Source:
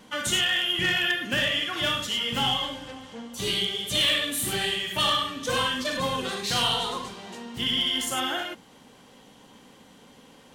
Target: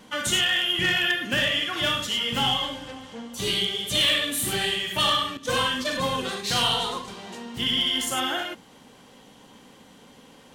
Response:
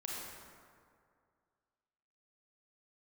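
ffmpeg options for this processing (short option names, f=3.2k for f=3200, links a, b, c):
-filter_complex "[0:a]asettb=1/sr,asplit=3[a][b][c];[a]atrim=end=5.374[d];[b]atrim=start=5.37:end=7.08,asetpts=PTS-STARTPTS,afade=t=in:d=0.004:c=qsin,afade=t=out:st=1.706:d=0.004:c=qsin,agate=range=-33dB:threshold=-29dB:ratio=3:detection=peak[e];[c]atrim=start=7.076[f];[d][e]acrossfade=d=0.004:c1=hsin:c2=qsin[g];[g][f]acrossfade=d=0.004:c1=qsin:c2=hsin,volume=1.5dB"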